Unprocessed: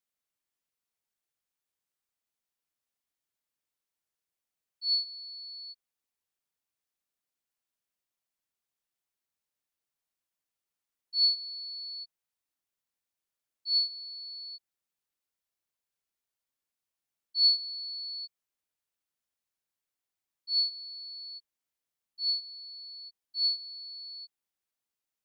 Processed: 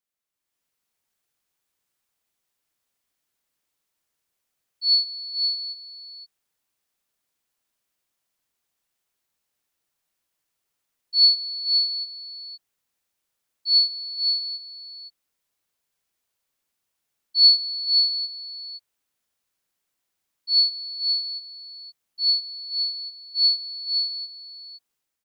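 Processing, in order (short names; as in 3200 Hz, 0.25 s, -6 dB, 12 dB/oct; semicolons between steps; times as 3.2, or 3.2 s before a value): AGC gain up to 9 dB; echo 0.519 s -7 dB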